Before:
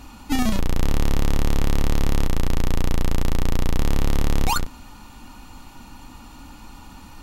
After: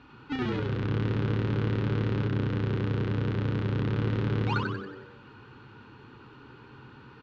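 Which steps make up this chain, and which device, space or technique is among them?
frequency-shifting delay pedal into a guitar cabinet (frequency-shifting echo 92 ms, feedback 50%, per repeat +92 Hz, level -5 dB; cabinet simulation 100–3700 Hz, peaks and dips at 130 Hz +7 dB, 180 Hz -5 dB, 430 Hz +7 dB, 680 Hz -9 dB, 1.5 kHz +8 dB); trim -9 dB

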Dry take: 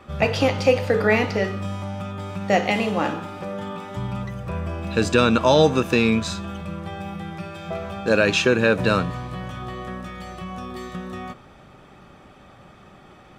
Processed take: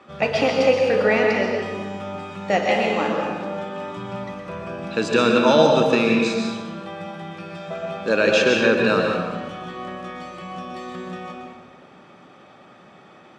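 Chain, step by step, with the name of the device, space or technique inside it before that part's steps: supermarket ceiling speaker (band-pass 210–7000 Hz; reverberation RT60 1.3 s, pre-delay 114 ms, DRR 1 dB); trim -1 dB

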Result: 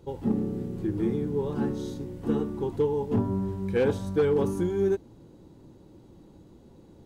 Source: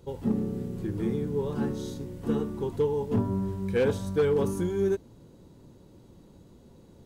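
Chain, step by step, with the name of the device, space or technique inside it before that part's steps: inside a helmet (treble shelf 5.2 kHz -5 dB; small resonant body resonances 320/800 Hz, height 6 dB)

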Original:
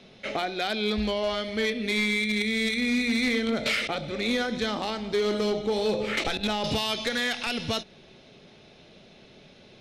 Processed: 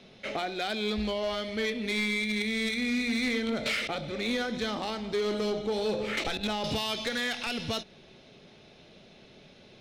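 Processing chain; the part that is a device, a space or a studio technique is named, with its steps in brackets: parallel distortion (in parallel at -7 dB: hard clipper -32 dBFS, distortion -6 dB); on the sum: trim -5 dB

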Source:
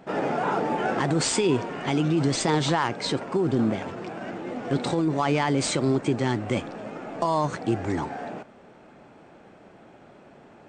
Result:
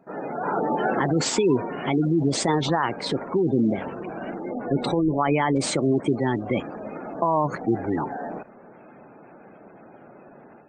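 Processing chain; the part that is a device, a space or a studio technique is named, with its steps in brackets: noise-suppressed video call (high-pass 130 Hz 12 dB/octave; spectral gate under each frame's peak -20 dB strong; level rider gain up to 10 dB; trim -6.5 dB; Opus 20 kbps 48 kHz)

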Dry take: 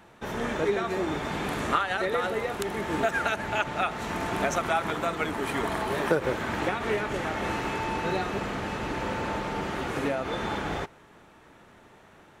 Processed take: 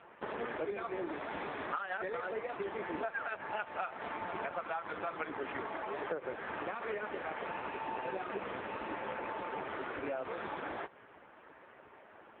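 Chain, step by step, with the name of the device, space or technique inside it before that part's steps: band-stop 3.5 kHz, Q 19; dynamic bell 3.7 kHz, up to +6 dB, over -59 dBFS, Q 5.6; voicemail (band-pass 330–2600 Hz; compression 6:1, threshold -36 dBFS, peak gain reduction 15.5 dB; trim +3 dB; AMR-NB 5.15 kbps 8 kHz)

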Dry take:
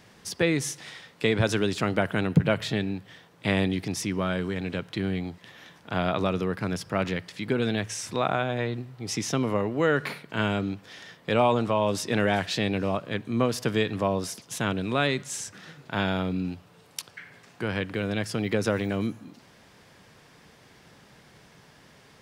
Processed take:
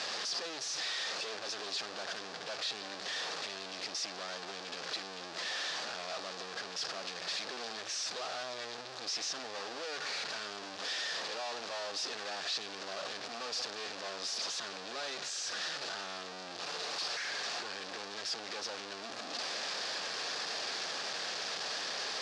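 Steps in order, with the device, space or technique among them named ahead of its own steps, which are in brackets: home computer beeper (one-bit comparator; cabinet simulation 720–5800 Hz, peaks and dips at 960 Hz -7 dB, 1.4 kHz -4 dB, 2.1 kHz -8 dB, 3 kHz -4 dB, 4.7 kHz +4 dB); trim -4.5 dB

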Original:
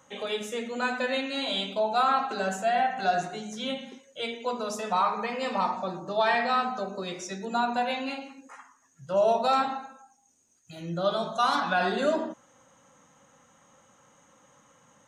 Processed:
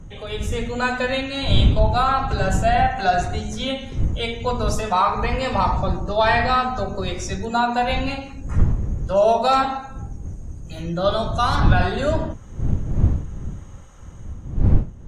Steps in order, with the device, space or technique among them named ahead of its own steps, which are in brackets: smartphone video outdoors (wind noise 92 Hz -25 dBFS; level rider gain up to 8 dB; trim -1 dB; AAC 64 kbps 32 kHz)

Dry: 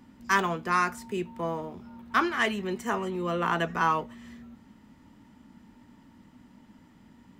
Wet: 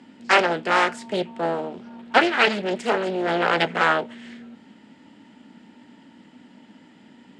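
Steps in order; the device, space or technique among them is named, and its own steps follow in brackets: full-range speaker at full volume (loudspeaker Doppler distortion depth 0.72 ms; cabinet simulation 250–8100 Hz, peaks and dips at 1.1 kHz -10 dB, 3 kHz +4 dB, 6 kHz -7 dB); trim +9 dB

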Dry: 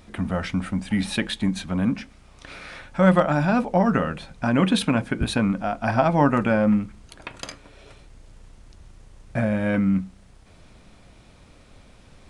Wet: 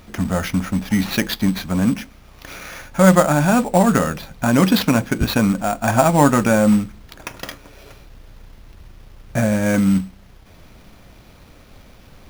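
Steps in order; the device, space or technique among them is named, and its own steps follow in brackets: early companding sampler (sample-rate reducer 8.2 kHz, jitter 0%; companded quantiser 6-bit); trim +5 dB

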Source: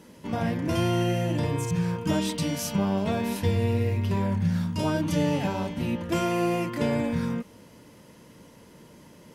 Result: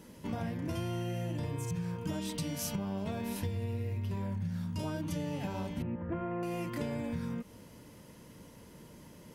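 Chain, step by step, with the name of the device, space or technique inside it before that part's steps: ASMR close-microphone chain (bass shelf 110 Hz +8 dB; compression, threshold -29 dBFS, peak gain reduction 12.5 dB; treble shelf 11 kHz +7.5 dB); 5.82–6.43 s: low-pass 1.8 kHz 24 dB/octave; trim -4 dB

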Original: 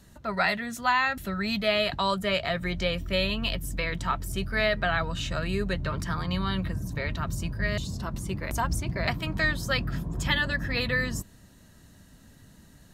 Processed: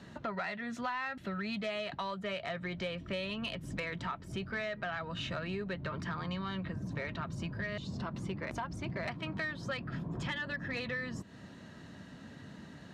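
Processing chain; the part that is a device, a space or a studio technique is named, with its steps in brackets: AM radio (band-pass 140–3400 Hz; compression 6:1, threshold -42 dBFS, peak gain reduction 20 dB; saturation -33.5 dBFS, distortion -22 dB); trim +7 dB

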